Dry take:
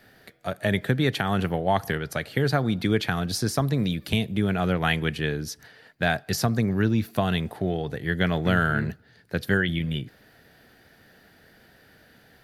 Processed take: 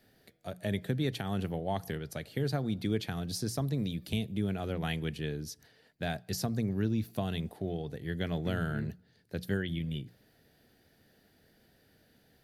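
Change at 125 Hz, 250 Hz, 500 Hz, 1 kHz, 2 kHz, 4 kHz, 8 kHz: −8.0, −8.0, −9.5, −13.0, −15.0, −10.0, −7.5 decibels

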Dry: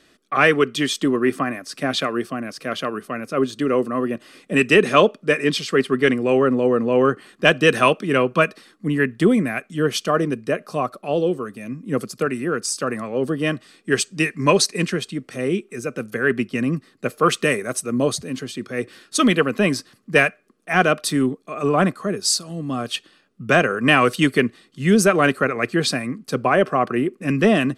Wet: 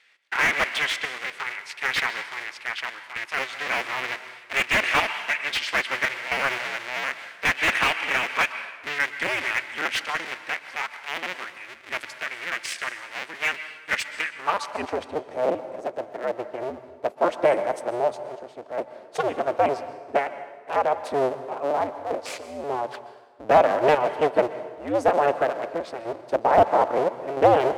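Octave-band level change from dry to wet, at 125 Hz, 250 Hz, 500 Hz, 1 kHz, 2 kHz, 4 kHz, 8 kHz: −16.5, −15.5, −5.0, −0.5, −2.5, −5.0, −12.0 decibels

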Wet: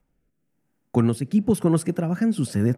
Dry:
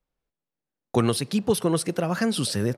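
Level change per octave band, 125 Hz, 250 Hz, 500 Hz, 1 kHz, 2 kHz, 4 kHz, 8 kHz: +4.5, +4.5, −1.5, −3.5, −5.0, −12.0, −6.0 decibels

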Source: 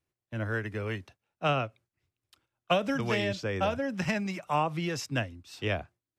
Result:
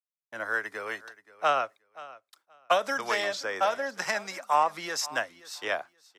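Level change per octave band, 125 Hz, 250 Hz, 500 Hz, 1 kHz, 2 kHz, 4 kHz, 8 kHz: −22.5, −12.0, +0.5, +5.5, +4.0, +2.0, +8.0 decibels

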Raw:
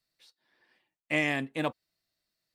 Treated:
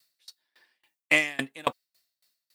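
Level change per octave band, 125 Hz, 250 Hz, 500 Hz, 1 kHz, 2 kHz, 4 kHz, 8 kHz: −6.5, −3.0, +0.5, +4.0, +5.5, +6.0, +10.0 decibels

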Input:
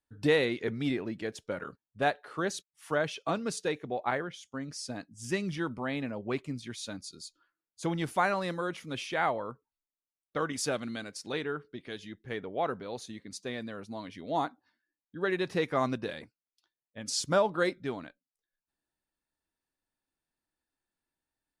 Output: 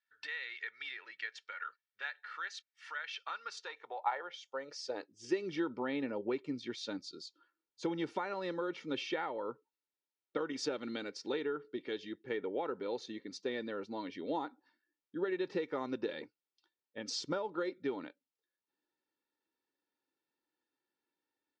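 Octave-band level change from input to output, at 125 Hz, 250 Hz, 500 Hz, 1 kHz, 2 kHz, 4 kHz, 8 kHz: −15.0, −5.0, −6.0, −7.5, −6.5, −5.0, −11.0 decibels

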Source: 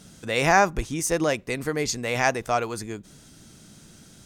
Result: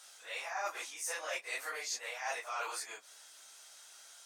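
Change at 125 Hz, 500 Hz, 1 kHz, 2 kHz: below −40 dB, −20.0 dB, −16.0 dB, −13.0 dB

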